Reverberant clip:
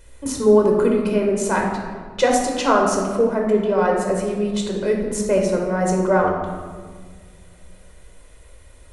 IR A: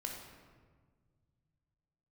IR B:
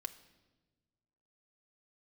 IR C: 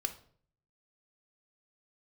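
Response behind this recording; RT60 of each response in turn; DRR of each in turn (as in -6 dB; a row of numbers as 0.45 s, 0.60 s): A; 1.6 s, 1.2 s, 0.55 s; 0.5 dB, 5.5 dB, 7.0 dB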